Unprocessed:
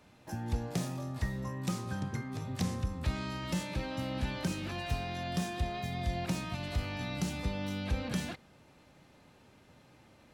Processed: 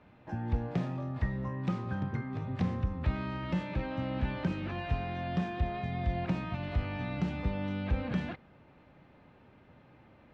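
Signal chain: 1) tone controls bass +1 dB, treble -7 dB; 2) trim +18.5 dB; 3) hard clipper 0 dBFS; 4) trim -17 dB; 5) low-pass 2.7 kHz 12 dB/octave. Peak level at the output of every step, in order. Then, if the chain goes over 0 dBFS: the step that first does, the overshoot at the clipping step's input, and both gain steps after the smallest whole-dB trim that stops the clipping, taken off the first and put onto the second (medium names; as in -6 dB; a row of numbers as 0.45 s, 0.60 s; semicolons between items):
-21.5 dBFS, -3.0 dBFS, -3.0 dBFS, -20.0 dBFS, -20.0 dBFS; nothing clips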